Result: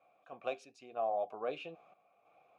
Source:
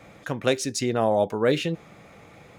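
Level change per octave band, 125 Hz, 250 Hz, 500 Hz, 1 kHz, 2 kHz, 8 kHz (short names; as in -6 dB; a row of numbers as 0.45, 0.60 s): -32.5 dB, -26.5 dB, -14.5 dB, -9.5 dB, -18.0 dB, under -30 dB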